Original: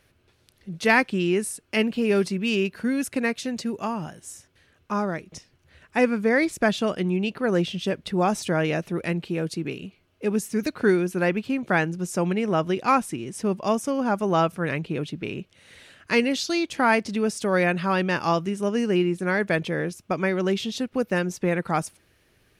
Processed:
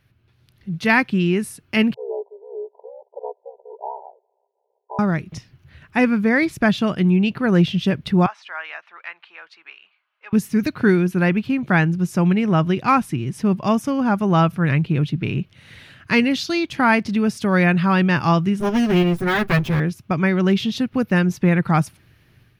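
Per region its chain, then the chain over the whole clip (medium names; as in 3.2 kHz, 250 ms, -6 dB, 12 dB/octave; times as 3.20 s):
1.94–4.99 s: ring modulator 33 Hz + brick-wall FIR band-pass 390–1000 Hz
8.26–10.33 s: high-pass 970 Hz 24 dB/octave + tape spacing loss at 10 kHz 32 dB
18.60–19.80 s: comb filter that takes the minimum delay 7.8 ms + treble shelf 9.9 kHz +9.5 dB + tape noise reduction on one side only decoder only
whole clip: graphic EQ 125/500/8000 Hz +11/-7/-11 dB; level rider gain up to 9 dB; trim -2 dB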